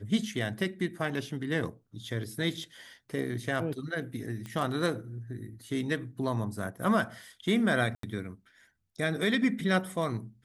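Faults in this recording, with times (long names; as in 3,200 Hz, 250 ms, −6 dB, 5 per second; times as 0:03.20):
0:04.46: click −26 dBFS
0:07.95–0:08.03: drop-out 83 ms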